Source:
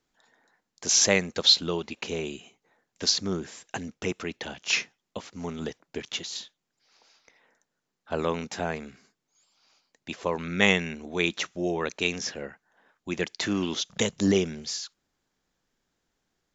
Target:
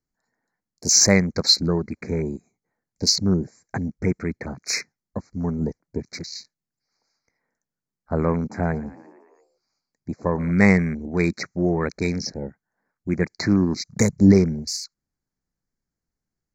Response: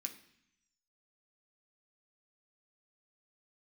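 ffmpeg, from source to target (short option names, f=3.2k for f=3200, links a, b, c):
-filter_complex "[0:a]afwtdn=0.0126,asuperstop=centerf=3100:order=12:qfactor=1.8,bass=f=250:g=12,treble=f=4k:g=3,asettb=1/sr,asplit=3[a][b][c];[a]atrim=end=8.384[d];[b]atrim=start=8.38:end=10.52,asetpts=PTS-STARTPTS,afade=t=in:d=0.004:c=qsin,afade=t=out:st=2.136:d=0.004:c=qsin,asplit=7[e][f][g][h][i][j][k];[f]adelay=114,afreqshift=49,volume=-19dB[l];[g]adelay=228,afreqshift=98,volume=-23dB[m];[h]adelay=342,afreqshift=147,volume=-27dB[n];[i]adelay=456,afreqshift=196,volume=-31dB[o];[j]adelay=570,afreqshift=245,volume=-35.1dB[p];[k]adelay=684,afreqshift=294,volume=-39.1dB[q];[e][l][m][n][o][p][q]amix=inputs=7:normalize=0,atrim=end_sample=94374[r];[c]atrim=start=10.516[s];[d][r]acrossfade=d=0.004:c1=hsin:c2=qsin[t];[t][s]acrossfade=d=0.004:c1=qsin:c2=hsin,volume=3dB"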